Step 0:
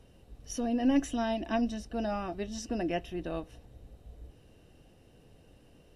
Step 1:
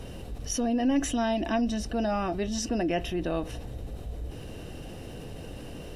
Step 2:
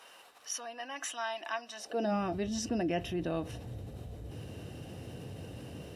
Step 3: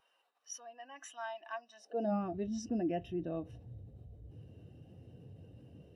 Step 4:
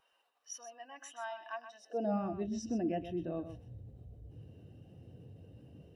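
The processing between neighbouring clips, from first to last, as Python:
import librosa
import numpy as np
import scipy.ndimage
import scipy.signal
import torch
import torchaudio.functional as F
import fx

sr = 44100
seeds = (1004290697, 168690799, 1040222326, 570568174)

y1 = fx.env_flatten(x, sr, amount_pct=50)
y2 = fx.filter_sweep_highpass(y1, sr, from_hz=1100.0, to_hz=99.0, start_s=1.74, end_s=2.28, q=1.8)
y2 = y2 * 10.0 ** (-5.0 / 20.0)
y3 = fx.spectral_expand(y2, sr, expansion=1.5)
y3 = y3 * 10.0 ** (-3.0 / 20.0)
y4 = y3 + 10.0 ** (-10.5 / 20.0) * np.pad(y3, (int(126 * sr / 1000.0), 0))[:len(y3)]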